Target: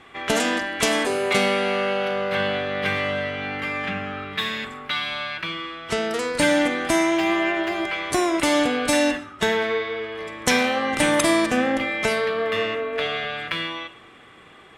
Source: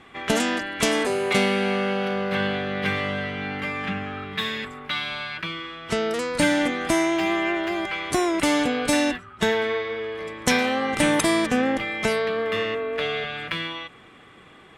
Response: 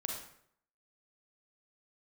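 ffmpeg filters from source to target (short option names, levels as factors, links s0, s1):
-filter_complex "[0:a]asplit=2[s0][s1];[s1]highpass=f=180:w=0.5412,highpass=f=180:w=1.3066[s2];[1:a]atrim=start_sample=2205[s3];[s2][s3]afir=irnorm=-1:irlink=0,volume=0.447[s4];[s0][s4]amix=inputs=2:normalize=0,volume=0.891"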